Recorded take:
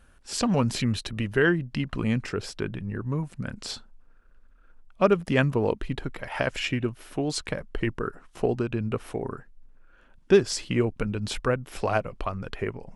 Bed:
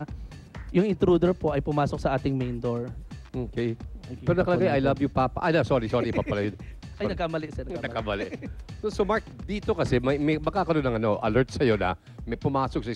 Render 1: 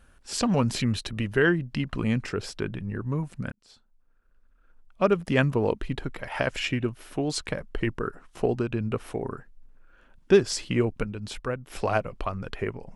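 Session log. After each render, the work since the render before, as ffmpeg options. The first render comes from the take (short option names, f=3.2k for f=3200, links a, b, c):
-filter_complex "[0:a]asplit=4[a][b][c][d];[a]atrim=end=3.52,asetpts=PTS-STARTPTS,afade=t=out:st=3.516:d=0.004:c=hsin[e];[b]atrim=start=3.52:end=11.042,asetpts=PTS-STARTPTS,afade=t=in:d=1.87[f];[c]atrim=start=11.038:end=11.702,asetpts=PTS-STARTPTS,volume=-5.5dB[g];[d]atrim=start=11.698[h];[e][f]concat=n=2:v=0:a=1[i];[i][g]acrossfade=d=0.004:c1=hsin:c2=hsin[j];[j][h]acrossfade=d=0.004:c1=hsin:c2=hsin"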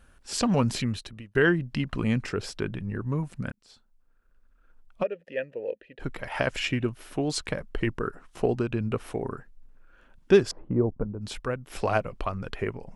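-filter_complex "[0:a]asplit=3[a][b][c];[a]afade=t=out:st=5.02:d=0.02[d];[b]asplit=3[e][f][g];[e]bandpass=f=530:t=q:w=8,volume=0dB[h];[f]bandpass=f=1.84k:t=q:w=8,volume=-6dB[i];[g]bandpass=f=2.48k:t=q:w=8,volume=-9dB[j];[h][i][j]amix=inputs=3:normalize=0,afade=t=in:st=5.02:d=0.02,afade=t=out:st=5.99:d=0.02[k];[c]afade=t=in:st=5.99:d=0.02[l];[d][k][l]amix=inputs=3:normalize=0,asettb=1/sr,asplit=3[m][n][o];[m]atrim=end=10.514[p];[n]atrim=start=10.51:end=11.21,asetpts=PTS-STARTPTS,afade=t=in:d=0.004:c=qsin,afade=t=out:st=0.696:d=0.004:c=qsin,lowpass=f=1k:w=0.5412,lowpass=f=1k:w=1.3066[q];[o]atrim=start=11.206[r];[p][q]acrossfade=d=0.004:c1=hsin:c2=qsin[s];[s][r]acrossfade=d=0.004:c1=qsin:c2=hsin,asplit=2[t][u];[t]atrim=end=1.35,asetpts=PTS-STARTPTS,afade=t=out:st=0.68:d=0.67[v];[u]atrim=start=1.35,asetpts=PTS-STARTPTS,afade=t=in:d=0.004:c=hsin[w];[v][w]concat=n=2:v=0:a=1"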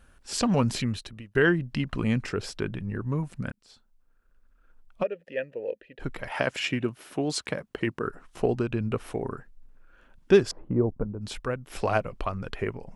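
-filter_complex "[0:a]asettb=1/sr,asplit=3[a][b][c];[a]atrim=end=6.314[d];[b]atrim=start=6.31:end=8.05,asetpts=PTS-STARTPTS,afade=t=in:d=0.004:c=qsin,afade=t=out:st=1.736:d=0.004:c=qsin,highpass=130[e];[c]atrim=start=8.046[f];[d][e]acrossfade=d=0.004:c1=hsin:c2=qsin[g];[g][f]acrossfade=d=0.004:c1=qsin:c2=hsin"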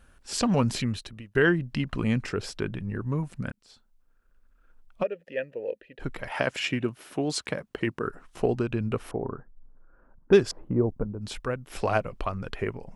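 -filter_complex "[0:a]asettb=1/sr,asplit=3[a][b][c];[a]atrim=end=9.114[d];[b]atrim=start=9.11:end=10.33,asetpts=PTS-STARTPTS,afade=t=in:d=0.004:c=qsin,afade=t=out:st=1.216:d=0.004:c=qsin,lowpass=f=1.3k:w=0.5412,lowpass=f=1.3k:w=1.3066[e];[c]atrim=start=10.326[f];[d][e]acrossfade=d=0.004:c1=hsin:c2=qsin[g];[g][f]acrossfade=d=0.004:c1=qsin:c2=hsin"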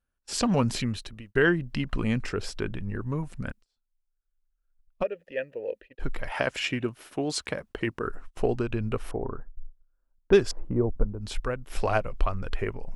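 -af "agate=range=-26dB:threshold=-47dB:ratio=16:detection=peak,asubboost=boost=4.5:cutoff=62"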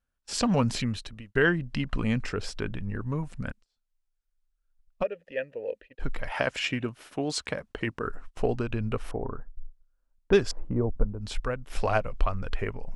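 -af "lowpass=9.7k,equalizer=f=360:t=o:w=0.27:g=-5"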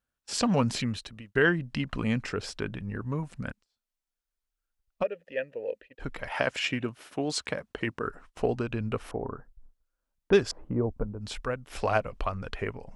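-af "highpass=f=90:p=1"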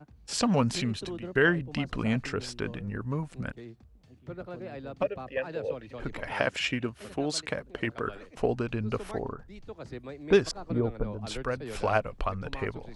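-filter_complex "[1:a]volume=-17.5dB[a];[0:a][a]amix=inputs=2:normalize=0"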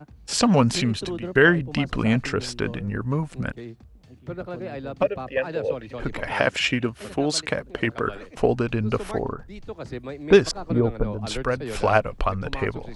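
-af "volume=7dB,alimiter=limit=-2dB:level=0:latency=1"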